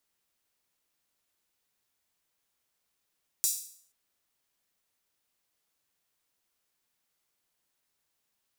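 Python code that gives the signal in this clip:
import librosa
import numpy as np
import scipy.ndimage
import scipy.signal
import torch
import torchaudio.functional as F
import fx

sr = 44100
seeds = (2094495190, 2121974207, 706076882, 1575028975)

y = fx.drum_hat_open(sr, length_s=0.48, from_hz=6500.0, decay_s=0.56)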